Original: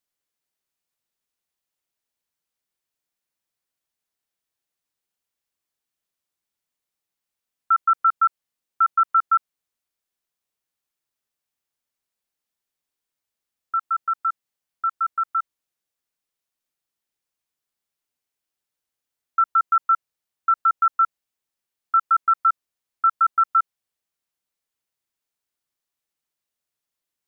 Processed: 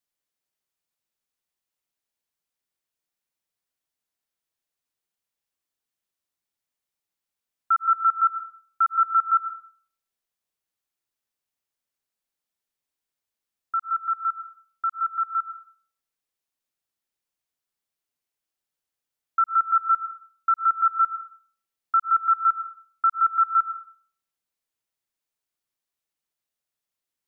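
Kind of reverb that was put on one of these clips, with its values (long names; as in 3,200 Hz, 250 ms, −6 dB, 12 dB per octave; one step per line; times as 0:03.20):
comb and all-pass reverb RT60 0.66 s, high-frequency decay 0.35×, pre-delay 85 ms, DRR 13 dB
level −2.5 dB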